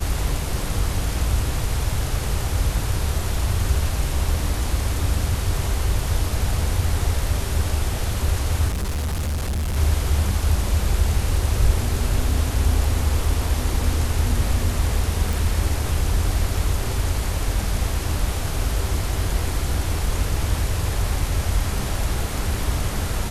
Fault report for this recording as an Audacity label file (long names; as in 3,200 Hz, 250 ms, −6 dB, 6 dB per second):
8.680000	9.770000	clipping −21 dBFS
15.330000	15.330000	click